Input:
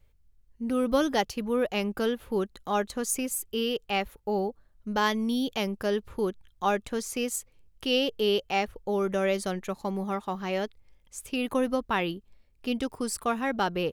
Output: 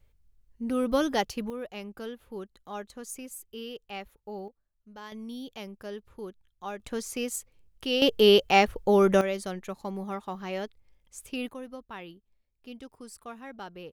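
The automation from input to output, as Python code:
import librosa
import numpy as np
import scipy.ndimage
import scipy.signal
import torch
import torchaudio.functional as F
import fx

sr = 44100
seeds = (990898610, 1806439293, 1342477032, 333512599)

y = fx.gain(x, sr, db=fx.steps((0.0, -1.0), (1.5, -11.0), (4.48, -19.0), (5.12, -11.5), (6.8, -2.0), (8.02, 7.0), (9.21, -4.0), (11.5, -14.5)))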